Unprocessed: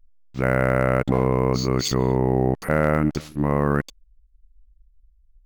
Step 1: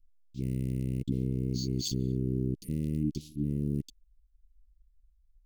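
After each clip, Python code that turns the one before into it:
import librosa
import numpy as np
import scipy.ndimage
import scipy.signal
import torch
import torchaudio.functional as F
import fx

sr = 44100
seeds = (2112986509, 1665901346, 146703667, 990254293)

y = scipy.signal.sosfilt(scipy.signal.cheby2(4, 50, [630.0, 1700.0], 'bandstop', fs=sr, output='sos'), x)
y = y * librosa.db_to_amplitude(-8.0)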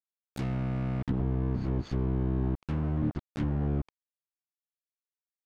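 y = fx.octave_divider(x, sr, octaves=1, level_db=-4.0)
y = fx.quant_dither(y, sr, seeds[0], bits=6, dither='none')
y = fx.env_lowpass_down(y, sr, base_hz=1000.0, full_db=-25.0)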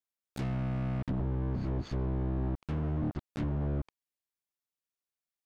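y = 10.0 ** (-26.0 / 20.0) * np.tanh(x / 10.0 ** (-26.0 / 20.0))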